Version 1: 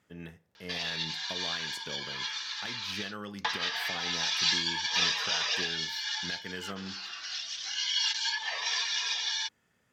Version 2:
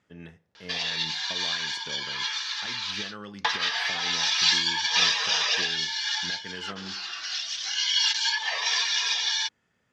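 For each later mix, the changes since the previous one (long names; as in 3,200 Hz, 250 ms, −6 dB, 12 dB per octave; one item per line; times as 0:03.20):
speech: add low-pass filter 6,600 Hz 12 dB per octave
background +5.5 dB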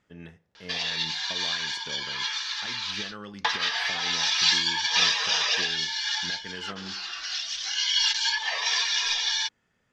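master: remove high-pass filter 58 Hz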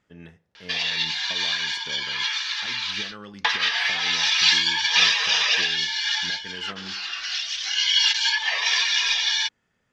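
background: add parametric band 2,400 Hz +7 dB 1.3 octaves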